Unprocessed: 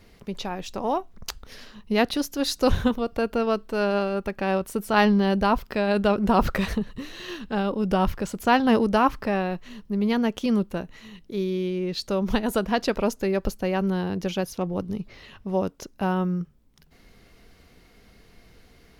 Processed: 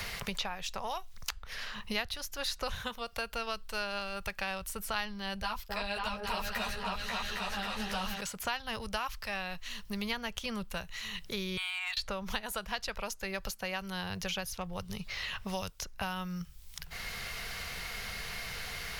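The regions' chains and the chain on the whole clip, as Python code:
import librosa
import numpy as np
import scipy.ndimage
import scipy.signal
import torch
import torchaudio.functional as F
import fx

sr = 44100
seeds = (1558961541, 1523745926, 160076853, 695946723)

y = fx.chain(x, sr, fx.echo_opening(ms=270, hz=750, octaves=2, feedback_pct=70, wet_db=0),
    fx.ensemble(), at=(5.42, 8.21))
y = fx.chain(y, sr, fx.brickwall_bandpass(low_hz=620.0, high_hz=4600.0),
    fx.over_compress(threshold_db=-45.0, ratio=-0.5),
    fx.leveller(passes=2), at=(11.57, 11.97))
y = fx.tone_stack(y, sr, knobs='10-0-10')
y = fx.band_squash(y, sr, depth_pct=100)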